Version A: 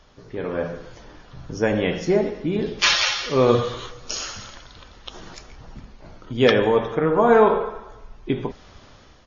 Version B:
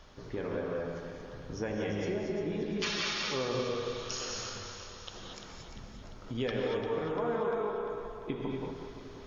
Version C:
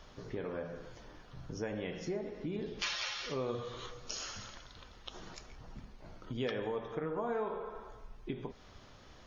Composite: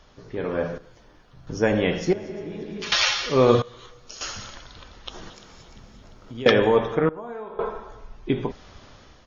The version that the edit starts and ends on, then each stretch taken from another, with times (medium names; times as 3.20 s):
A
0.78–1.47 s: from C
2.13–2.92 s: from B
3.62–4.21 s: from C
5.30–6.46 s: from B
7.09–7.59 s: from C